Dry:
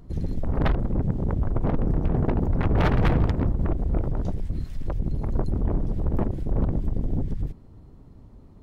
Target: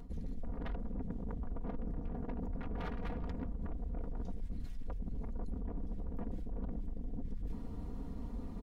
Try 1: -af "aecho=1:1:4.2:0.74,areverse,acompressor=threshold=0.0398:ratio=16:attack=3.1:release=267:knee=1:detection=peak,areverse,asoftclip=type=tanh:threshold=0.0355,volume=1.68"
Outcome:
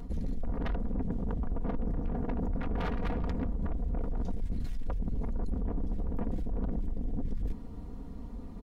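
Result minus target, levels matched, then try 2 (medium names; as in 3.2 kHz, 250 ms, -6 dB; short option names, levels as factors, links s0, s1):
compression: peak gain reduction -9.5 dB
-af "aecho=1:1:4.2:0.74,areverse,acompressor=threshold=0.0126:ratio=16:attack=3.1:release=267:knee=1:detection=peak,areverse,asoftclip=type=tanh:threshold=0.0355,volume=1.68"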